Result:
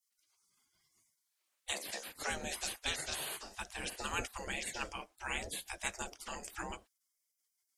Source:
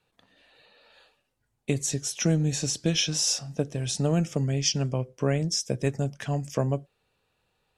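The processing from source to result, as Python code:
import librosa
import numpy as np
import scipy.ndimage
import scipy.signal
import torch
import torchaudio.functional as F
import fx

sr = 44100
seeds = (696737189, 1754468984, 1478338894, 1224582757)

y = fx.octave_divider(x, sr, octaves=2, level_db=2.0, at=(1.73, 2.3))
y = fx.spec_gate(y, sr, threshold_db=-25, keep='weak')
y = y * 10.0 ** (6.0 / 20.0)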